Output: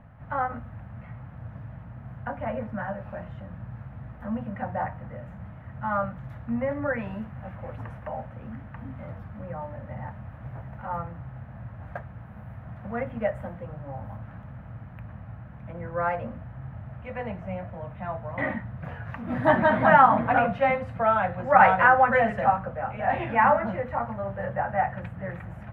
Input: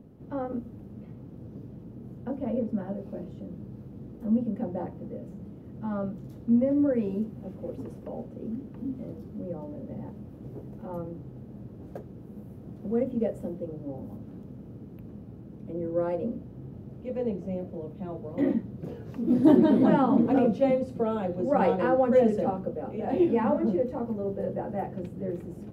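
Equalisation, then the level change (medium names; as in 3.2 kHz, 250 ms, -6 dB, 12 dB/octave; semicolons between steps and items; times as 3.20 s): FFT filter 110 Hz 0 dB, 400 Hz -25 dB, 640 Hz +1 dB, 1.8 kHz +12 dB, 5.1 kHz -16 dB; +7.5 dB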